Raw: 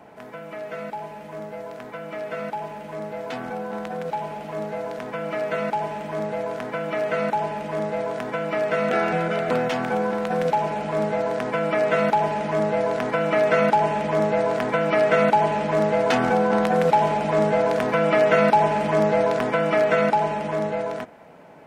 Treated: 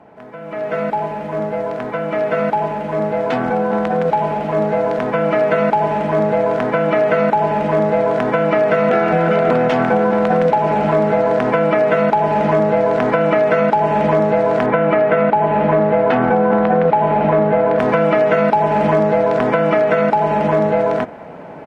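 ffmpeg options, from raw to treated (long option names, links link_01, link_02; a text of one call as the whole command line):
ffmpeg -i in.wav -filter_complex "[0:a]asplit=2[link_01][link_02];[link_02]afade=type=in:start_time=8.11:duration=0.01,afade=type=out:start_time=8.96:duration=0.01,aecho=0:1:540|1080|1620|2160|2700|3240|3780|4320|4860|5400|5940|6480:0.334965|0.251224|0.188418|0.141314|0.105985|0.0794889|0.0596167|0.0447125|0.0335344|0.0251508|0.0188631|0.0141473[link_03];[link_01][link_03]amix=inputs=2:normalize=0,asettb=1/sr,asplit=3[link_04][link_05][link_06];[link_04]atrim=end=14.664[link_07];[link_05]atrim=start=14.66:end=17.79,asetpts=PTS-STARTPTS,afade=type=in:duration=0.004:curve=qsin,afade=type=out:start_time=3.126:duration=0.004:curve=qsin,lowpass=2800[link_08];[link_06]atrim=start=17.786[link_09];[link_07][link_08]acrossfade=duration=0.004:curve1=hsin:curve2=qsin[link_10];[link_10][link_09]acrossfade=duration=0.004:curve1=qsin:curve2=hsin,acompressor=threshold=-24dB:ratio=6,lowpass=frequency=1600:poles=1,dynaudnorm=framelen=370:gausssize=3:maxgain=11.5dB,volume=2.5dB" out.wav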